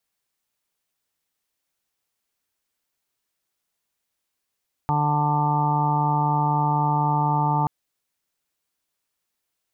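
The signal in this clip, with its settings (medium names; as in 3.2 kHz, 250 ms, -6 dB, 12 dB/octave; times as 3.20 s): steady additive tone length 2.78 s, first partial 148 Hz, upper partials -9/-15.5/-20/-7/1/-13/-8 dB, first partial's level -22.5 dB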